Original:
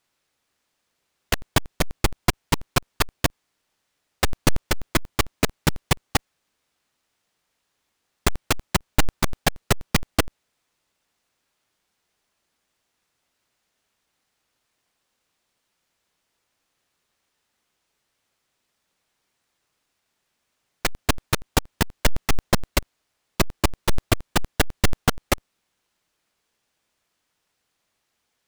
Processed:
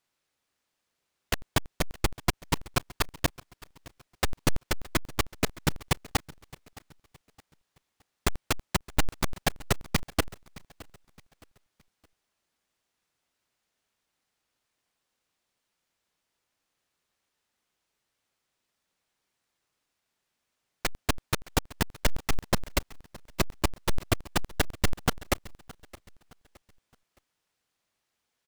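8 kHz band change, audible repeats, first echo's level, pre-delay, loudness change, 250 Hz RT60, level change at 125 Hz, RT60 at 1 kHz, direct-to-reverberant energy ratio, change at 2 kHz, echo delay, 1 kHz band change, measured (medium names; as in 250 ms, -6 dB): -6.0 dB, 2, -21.0 dB, no reverb, -6.0 dB, no reverb, -6.0 dB, no reverb, no reverb, -6.0 dB, 617 ms, -6.0 dB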